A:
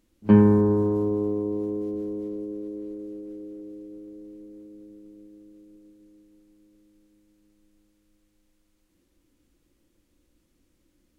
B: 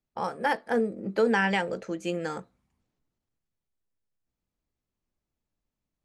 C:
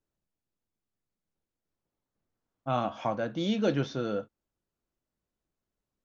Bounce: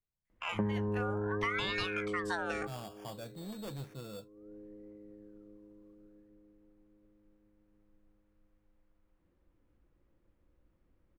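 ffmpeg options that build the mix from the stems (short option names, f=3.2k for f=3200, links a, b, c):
-filter_complex "[0:a]lowpass=1.4k,adelay=300,volume=0dB[a];[1:a]dynaudnorm=f=570:g=3:m=6dB,aeval=exprs='val(0)*sin(2*PI*1500*n/s+1500*0.35/0.64*sin(2*PI*0.64*n/s))':c=same,adelay=250,volume=-4dB[b];[2:a]lowshelf=f=390:g=11,acrusher=samples=11:mix=1:aa=0.000001,asoftclip=type=tanh:threshold=-18.5dB,volume=-15dB,asplit=2[c][d];[d]apad=whole_len=506440[e];[a][e]sidechaincompress=threshold=-57dB:ratio=4:attack=16:release=280[f];[f][b][c]amix=inputs=3:normalize=0,equalizer=f=280:w=1.5:g=-9.5,acompressor=threshold=-31dB:ratio=6"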